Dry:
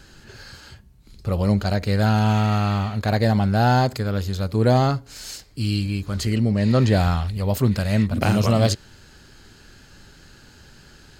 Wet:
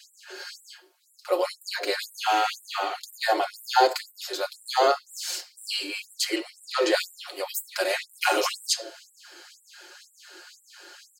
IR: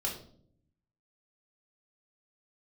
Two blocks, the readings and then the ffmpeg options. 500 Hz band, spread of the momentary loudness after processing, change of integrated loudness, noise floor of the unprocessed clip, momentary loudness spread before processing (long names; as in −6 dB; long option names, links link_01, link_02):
−2.5 dB, 17 LU, −6.0 dB, −49 dBFS, 8 LU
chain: -filter_complex "[0:a]aecho=1:1:5.6:0.74,asplit=2[link_01][link_02];[1:a]atrim=start_sample=2205[link_03];[link_02][link_03]afir=irnorm=-1:irlink=0,volume=-9.5dB[link_04];[link_01][link_04]amix=inputs=2:normalize=0,afftfilt=real='re*gte(b*sr/1024,260*pow(7400/260,0.5+0.5*sin(2*PI*2*pts/sr)))':imag='im*gte(b*sr/1024,260*pow(7400/260,0.5+0.5*sin(2*PI*2*pts/sr)))':win_size=1024:overlap=0.75"